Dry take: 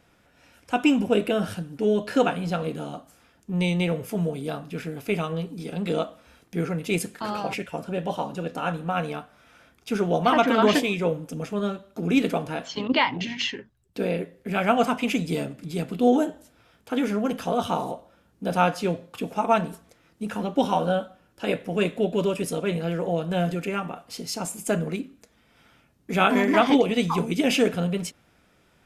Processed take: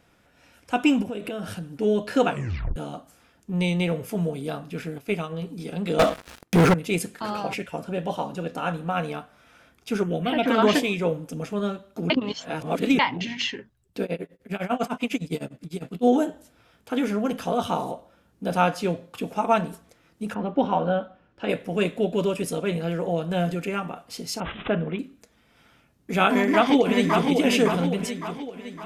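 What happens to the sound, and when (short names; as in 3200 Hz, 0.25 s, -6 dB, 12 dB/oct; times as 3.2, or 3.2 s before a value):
1.02–1.63 compressor, threshold -28 dBFS
2.3 tape stop 0.46 s
4.98–5.42 upward expander, over -38 dBFS
5.99–6.74 sample leveller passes 5
10.03–10.46 envelope phaser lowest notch 540 Hz, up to 1200 Hz, full sweep at -15 dBFS
12.1–12.99 reverse
14.03–16.05 tremolo 9.9 Hz, depth 95%
20.33–21.48 LPF 2000 Hz -> 3400 Hz
24.4–24.99 careless resampling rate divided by 6×, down none, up filtered
26.29–27.26 echo throw 0.56 s, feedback 50%, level -4.5 dB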